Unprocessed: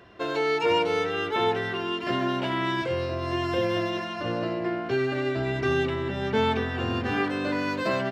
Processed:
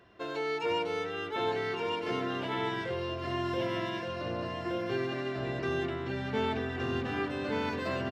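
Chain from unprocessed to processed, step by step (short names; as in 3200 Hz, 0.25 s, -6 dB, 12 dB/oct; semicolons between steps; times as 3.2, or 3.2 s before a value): echo 1.169 s -3.5 dB; gain -8 dB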